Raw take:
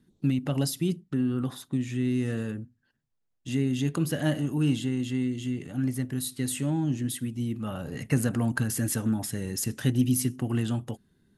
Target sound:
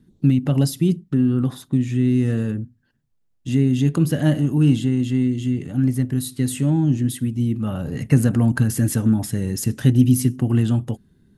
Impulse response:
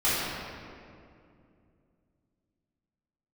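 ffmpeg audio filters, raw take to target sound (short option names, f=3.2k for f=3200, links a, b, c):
-af "lowshelf=f=360:g=9,volume=2.5dB"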